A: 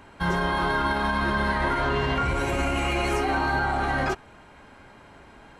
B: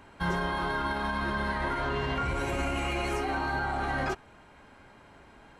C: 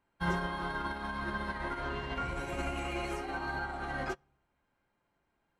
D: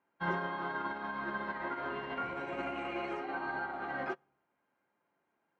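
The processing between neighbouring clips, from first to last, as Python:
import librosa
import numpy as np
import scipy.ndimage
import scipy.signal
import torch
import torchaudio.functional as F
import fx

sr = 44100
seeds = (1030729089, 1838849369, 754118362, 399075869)

y1 = fx.rider(x, sr, range_db=10, speed_s=0.5)
y1 = y1 * librosa.db_to_amplitude(-5.5)
y2 = fx.room_shoebox(y1, sr, seeds[0], volume_m3=2500.0, walls='furnished', distance_m=0.82)
y2 = fx.upward_expand(y2, sr, threshold_db=-42.0, expansion=2.5)
y2 = y2 * librosa.db_to_amplitude(-1.5)
y3 = fx.bandpass_edges(y2, sr, low_hz=220.0, high_hz=2500.0)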